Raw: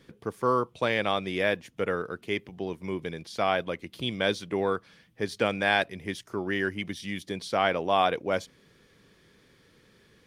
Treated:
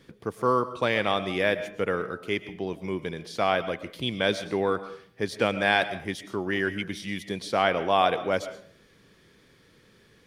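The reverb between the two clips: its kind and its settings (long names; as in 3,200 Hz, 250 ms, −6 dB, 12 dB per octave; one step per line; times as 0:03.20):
comb and all-pass reverb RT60 0.54 s, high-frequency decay 0.55×, pre-delay 80 ms, DRR 12.5 dB
level +1.5 dB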